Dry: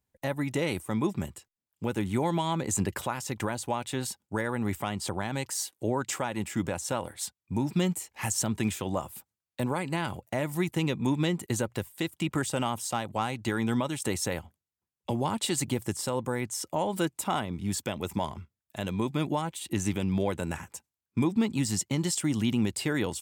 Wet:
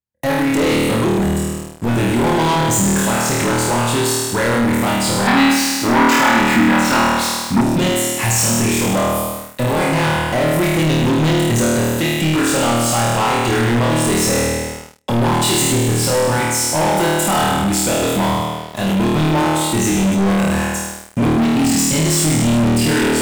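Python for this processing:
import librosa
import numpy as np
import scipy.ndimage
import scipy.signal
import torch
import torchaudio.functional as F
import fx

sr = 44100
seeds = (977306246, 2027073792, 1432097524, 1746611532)

y = fx.room_flutter(x, sr, wall_m=4.4, rt60_s=1.3)
y = fx.leveller(y, sr, passes=5)
y = fx.graphic_eq(y, sr, hz=(125, 250, 500, 1000, 2000, 4000, 8000), db=(-7, 9, -9, 8, 7, 4, -8), at=(5.27, 7.61))
y = F.gain(torch.from_numpy(y), -4.0).numpy()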